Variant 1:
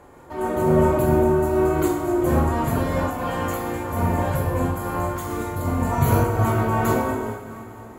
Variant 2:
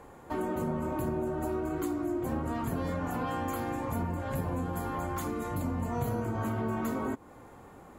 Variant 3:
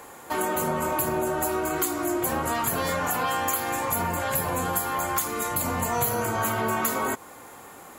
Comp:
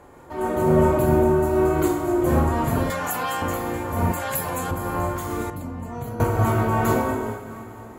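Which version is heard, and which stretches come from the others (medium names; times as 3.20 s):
1
2.90–3.42 s: from 3
4.12–4.71 s: from 3
5.50–6.20 s: from 2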